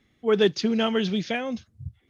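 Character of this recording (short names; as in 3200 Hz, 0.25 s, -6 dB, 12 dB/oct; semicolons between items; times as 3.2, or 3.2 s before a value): noise floor -67 dBFS; spectral tilt -4.0 dB/oct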